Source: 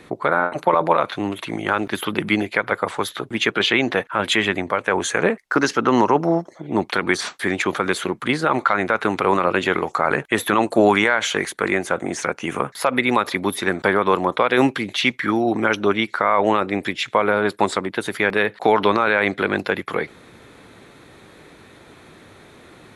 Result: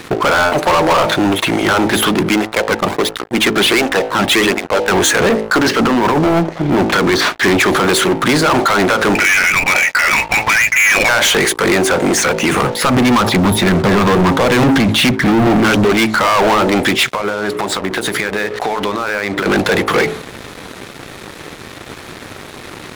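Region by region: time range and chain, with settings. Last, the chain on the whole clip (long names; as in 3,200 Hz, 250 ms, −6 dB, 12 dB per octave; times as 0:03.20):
0:02.11–0:04.97: slack as between gear wheels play −24 dBFS + through-zero flanger with one copy inverted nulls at 1.4 Hz, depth 2.2 ms
0:05.62–0:07.61: compressor whose output falls as the input rises −19 dBFS, ratio −0.5 + high-frequency loss of the air 200 metres
0:09.15–0:11.09: parametric band 710 Hz +5 dB 0.21 octaves + voice inversion scrambler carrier 2,700 Hz + saturating transformer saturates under 1,300 Hz
0:12.69–0:15.85: bass and treble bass +12 dB, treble −7 dB + auto-filter notch saw down 3.6 Hz 240–2,800 Hz
0:17.08–0:19.46: mains-hum notches 60/120/180/240/300/360/420/480/540/600 Hz + downward compressor 16 to 1, threshold −29 dBFS
whole clip: hum removal 54.39 Hz, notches 17; brickwall limiter −8 dBFS; leveller curve on the samples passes 5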